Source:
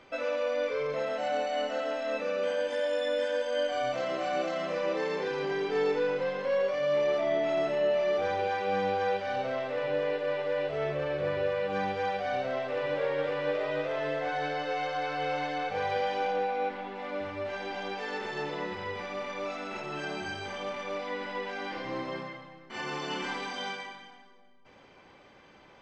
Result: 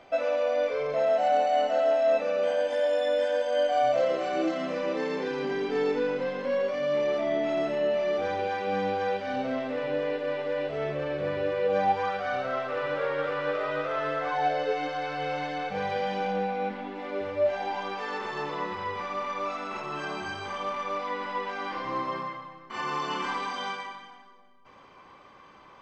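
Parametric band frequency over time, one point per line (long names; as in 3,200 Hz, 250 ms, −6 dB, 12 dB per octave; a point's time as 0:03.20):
parametric band +14 dB 0.33 octaves
0:03.86 690 Hz
0:04.66 250 Hz
0:11.41 250 Hz
0:12.12 1,300 Hz
0:14.23 1,300 Hz
0:15.04 190 Hz
0:16.65 190 Hz
0:17.88 1,100 Hz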